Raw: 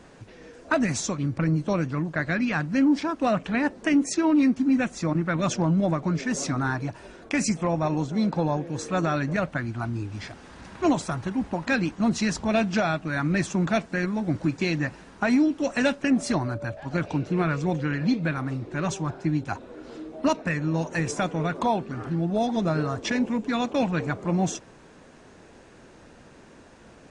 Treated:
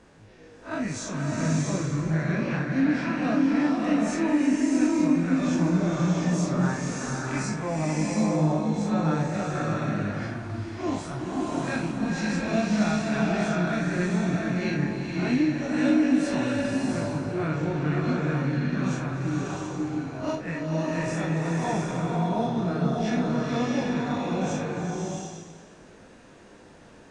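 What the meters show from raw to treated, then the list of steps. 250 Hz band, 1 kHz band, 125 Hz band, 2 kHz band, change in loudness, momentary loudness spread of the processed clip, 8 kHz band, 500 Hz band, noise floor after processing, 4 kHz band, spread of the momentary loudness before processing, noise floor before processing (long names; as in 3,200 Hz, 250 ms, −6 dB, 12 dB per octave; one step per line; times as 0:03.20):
+0.5 dB, −2.0 dB, +1.0 dB, −2.5 dB, −0.5 dB, 8 LU, −2.5 dB, −1.0 dB, −50 dBFS, −2.5 dB, 8 LU, −51 dBFS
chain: spectrum smeared in time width 96 ms
chorus effect 0.12 Hz, delay 19 ms, depth 4.8 ms
slow-attack reverb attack 700 ms, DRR −2.5 dB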